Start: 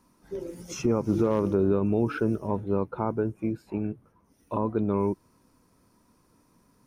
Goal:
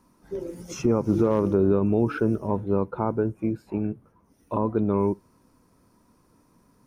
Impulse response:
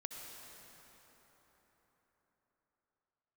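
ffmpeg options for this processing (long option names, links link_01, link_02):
-filter_complex "[0:a]asplit=2[link_01][link_02];[1:a]atrim=start_sample=2205,atrim=end_sample=3087,lowpass=2100[link_03];[link_02][link_03]afir=irnorm=-1:irlink=0,volume=-4dB[link_04];[link_01][link_04]amix=inputs=2:normalize=0"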